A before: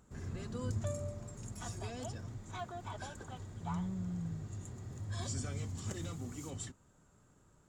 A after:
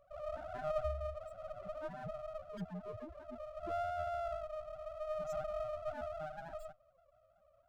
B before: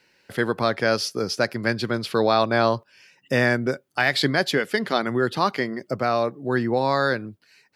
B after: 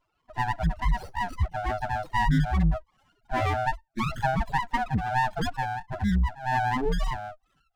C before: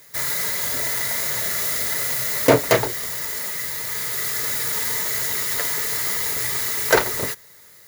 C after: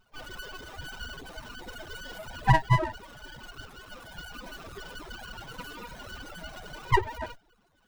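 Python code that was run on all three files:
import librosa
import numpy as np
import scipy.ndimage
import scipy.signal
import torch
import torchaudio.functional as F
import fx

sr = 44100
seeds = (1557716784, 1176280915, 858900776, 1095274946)

y = fx.band_swap(x, sr, width_hz=500)
y = fx.spec_topn(y, sr, count=4)
y = fx.running_max(y, sr, window=17)
y = y * 10.0 ** (2.0 / 20.0)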